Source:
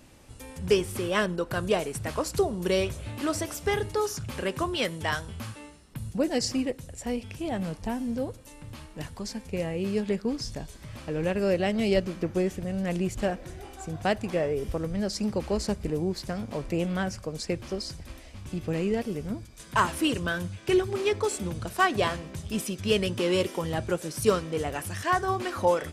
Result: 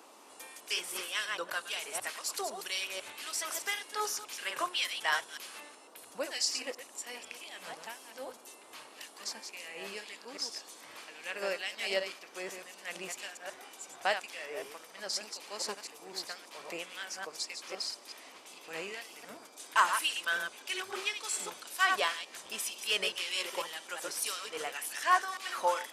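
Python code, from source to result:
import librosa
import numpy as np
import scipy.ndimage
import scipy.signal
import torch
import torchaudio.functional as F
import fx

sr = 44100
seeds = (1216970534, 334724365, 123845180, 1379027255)

y = fx.reverse_delay(x, sr, ms=125, wet_db=-7.0)
y = fx.filter_lfo_highpass(y, sr, shape='sine', hz=1.9, low_hz=840.0, high_hz=2600.0, q=0.76)
y = fx.dmg_noise_band(y, sr, seeds[0], low_hz=250.0, high_hz=1200.0, level_db=-58.0)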